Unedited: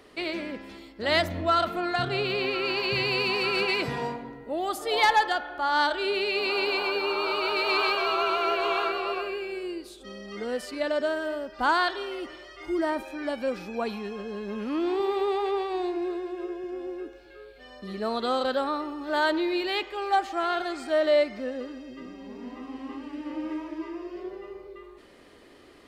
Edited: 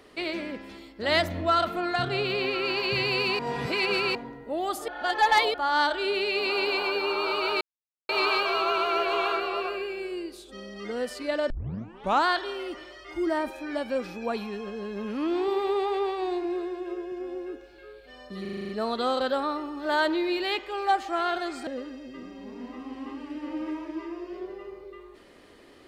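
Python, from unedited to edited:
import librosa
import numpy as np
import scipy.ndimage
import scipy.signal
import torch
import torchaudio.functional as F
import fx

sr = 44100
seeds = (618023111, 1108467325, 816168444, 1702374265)

y = fx.edit(x, sr, fx.reverse_span(start_s=3.39, length_s=0.76),
    fx.reverse_span(start_s=4.88, length_s=0.66),
    fx.insert_silence(at_s=7.61, length_s=0.48),
    fx.tape_start(start_s=11.02, length_s=0.75),
    fx.stutter(start_s=17.93, slice_s=0.04, count=8),
    fx.cut(start_s=20.91, length_s=0.59), tone=tone)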